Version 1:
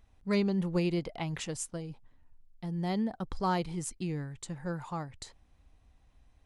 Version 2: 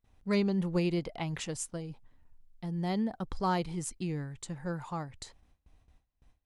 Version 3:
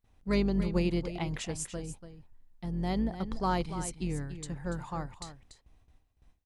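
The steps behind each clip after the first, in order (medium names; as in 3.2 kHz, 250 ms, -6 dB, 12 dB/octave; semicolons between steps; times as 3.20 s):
gate with hold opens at -52 dBFS
octave divider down 2 oct, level -5 dB; delay 288 ms -11 dB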